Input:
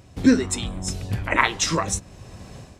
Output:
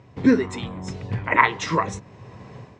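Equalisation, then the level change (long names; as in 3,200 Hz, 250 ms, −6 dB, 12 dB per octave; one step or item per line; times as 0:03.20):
bass and treble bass +3 dB, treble −10 dB
loudspeaker in its box 120–7,200 Hz, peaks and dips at 120 Hz +6 dB, 440 Hz +7 dB, 990 Hz +9 dB, 2,000 Hz +6 dB
−2.5 dB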